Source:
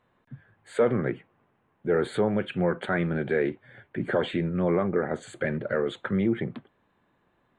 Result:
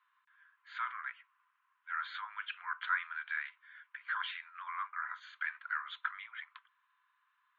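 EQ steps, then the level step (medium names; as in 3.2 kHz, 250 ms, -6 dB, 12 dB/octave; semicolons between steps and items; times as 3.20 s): rippled Chebyshev high-pass 990 Hz, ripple 3 dB; brick-wall FIR low-pass 7 kHz; distance through air 260 m; +1.5 dB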